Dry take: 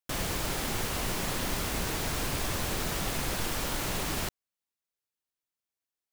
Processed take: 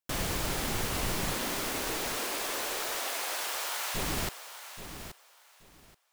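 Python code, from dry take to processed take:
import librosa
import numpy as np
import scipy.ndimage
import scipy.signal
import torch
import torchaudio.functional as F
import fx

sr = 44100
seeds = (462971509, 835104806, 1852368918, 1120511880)

y = fx.highpass(x, sr, hz=fx.line((1.34, 200.0), (3.94, 760.0)), slope=24, at=(1.34, 3.94), fade=0.02)
y = fx.echo_feedback(y, sr, ms=828, feedback_pct=20, wet_db=-11)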